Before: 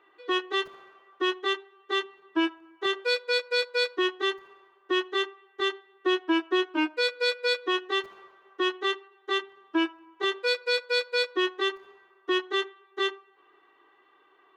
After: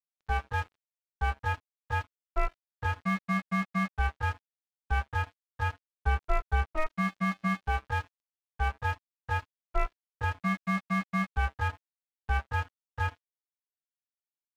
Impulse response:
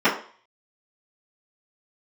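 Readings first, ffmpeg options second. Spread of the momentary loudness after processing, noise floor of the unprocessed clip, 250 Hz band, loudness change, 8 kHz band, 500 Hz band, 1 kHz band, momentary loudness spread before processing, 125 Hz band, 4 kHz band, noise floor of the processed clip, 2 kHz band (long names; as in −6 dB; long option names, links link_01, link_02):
6 LU, −63 dBFS, −4.0 dB, −4.5 dB, −6.0 dB, −14.0 dB, +1.0 dB, 6 LU, can't be measured, −19.5 dB, below −85 dBFS, −4.5 dB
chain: -filter_complex "[0:a]highpass=frequency=200:width_type=q:width=0.5412,highpass=frequency=200:width_type=q:width=1.307,lowpass=frequency=2400:width_type=q:width=0.5176,lowpass=frequency=2400:width_type=q:width=0.7071,lowpass=frequency=2400:width_type=q:width=1.932,afreqshift=-300,asplit=2[link_01][link_02];[1:a]atrim=start_sample=2205,asetrate=57330,aresample=44100,lowshelf=frequency=260:gain=-9[link_03];[link_02][link_03]afir=irnorm=-1:irlink=0,volume=-37dB[link_04];[link_01][link_04]amix=inputs=2:normalize=0,aeval=exprs='sgn(val(0))*max(abs(val(0))-0.00891,0)':channel_layout=same"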